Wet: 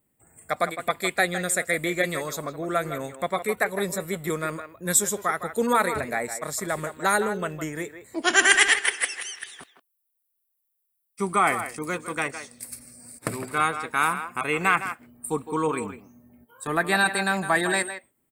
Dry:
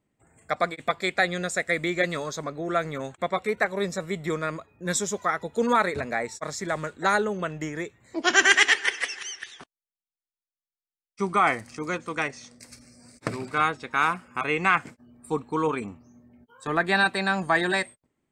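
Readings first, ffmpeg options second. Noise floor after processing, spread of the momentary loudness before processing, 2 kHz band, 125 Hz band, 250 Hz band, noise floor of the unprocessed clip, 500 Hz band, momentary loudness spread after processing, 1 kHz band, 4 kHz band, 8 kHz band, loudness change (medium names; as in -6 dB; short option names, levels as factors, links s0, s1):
-76 dBFS, 12 LU, +0.5 dB, 0.0 dB, 0.0 dB, under -85 dBFS, +0.5 dB, 13 LU, +0.5 dB, 0.0 dB, +6.5 dB, +1.0 dB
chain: -filter_complex "[0:a]aexciter=amount=7.5:drive=7.2:freq=8600,asplit=2[s0][s1];[s1]adelay=160,highpass=300,lowpass=3400,asoftclip=type=hard:threshold=0.282,volume=0.316[s2];[s0][s2]amix=inputs=2:normalize=0"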